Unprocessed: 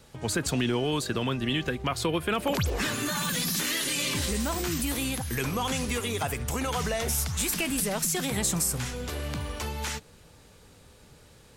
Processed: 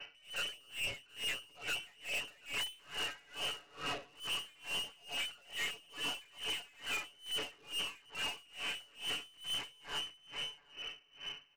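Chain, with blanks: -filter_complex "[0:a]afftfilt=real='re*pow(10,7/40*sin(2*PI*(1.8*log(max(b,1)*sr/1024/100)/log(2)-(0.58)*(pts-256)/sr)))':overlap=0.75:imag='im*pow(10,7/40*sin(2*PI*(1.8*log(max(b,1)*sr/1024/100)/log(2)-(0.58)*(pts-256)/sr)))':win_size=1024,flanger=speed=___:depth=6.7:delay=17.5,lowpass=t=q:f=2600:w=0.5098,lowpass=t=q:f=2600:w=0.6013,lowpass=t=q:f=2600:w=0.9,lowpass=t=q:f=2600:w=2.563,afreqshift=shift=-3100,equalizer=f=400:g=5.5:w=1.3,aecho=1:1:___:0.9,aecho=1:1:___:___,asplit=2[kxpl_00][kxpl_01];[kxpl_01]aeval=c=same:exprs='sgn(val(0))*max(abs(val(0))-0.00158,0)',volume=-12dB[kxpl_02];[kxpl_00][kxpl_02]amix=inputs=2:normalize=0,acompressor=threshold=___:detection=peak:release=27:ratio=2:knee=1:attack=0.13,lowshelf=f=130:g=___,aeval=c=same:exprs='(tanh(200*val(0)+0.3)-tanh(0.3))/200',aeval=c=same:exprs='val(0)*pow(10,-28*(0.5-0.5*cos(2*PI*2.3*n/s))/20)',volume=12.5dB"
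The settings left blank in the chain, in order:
2.2, 7, 731, 0.282, -48dB, 5.5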